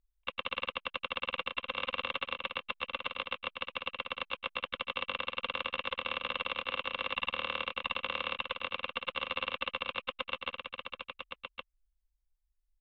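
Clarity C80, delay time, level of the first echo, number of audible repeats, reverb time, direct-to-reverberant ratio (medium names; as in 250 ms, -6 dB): no reverb, 1116 ms, -6.0 dB, 1, no reverb, no reverb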